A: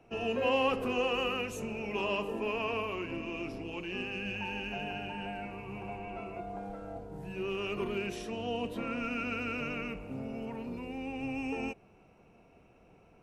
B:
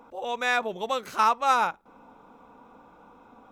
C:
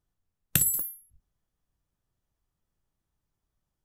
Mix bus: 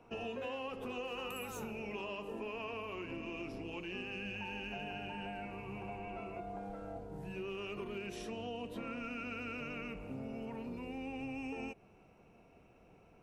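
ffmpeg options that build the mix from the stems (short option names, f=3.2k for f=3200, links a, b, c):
-filter_complex "[0:a]volume=-2dB[a];[1:a]acompressor=threshold=-29dB:ratio=6,volume=-14.5dB,asplit=2[b][c];[2:a]adelay=750,volume=-15dB[d];[c]apad=whole_len=206913[e];[d][e]sidechaincompress=threshold=-52dB:ratio=8:attack=16:release=390[f];[a][b][f]amix=inputs=3:normalize=0,acompressor=threshold=-39dB:ratio=6"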